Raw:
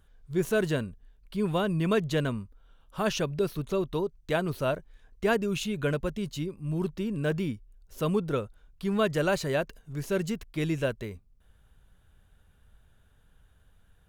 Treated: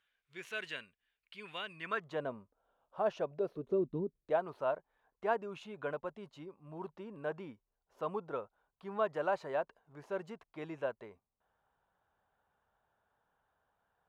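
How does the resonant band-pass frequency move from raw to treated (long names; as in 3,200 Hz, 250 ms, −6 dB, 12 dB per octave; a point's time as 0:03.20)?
resonant band-pass, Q 2.2
0:01.74 2,400 Hz
0:02.25 690 Hz
0:03.38 690 Hz
0:04.00 210 Hz
0:04.40 860 Hz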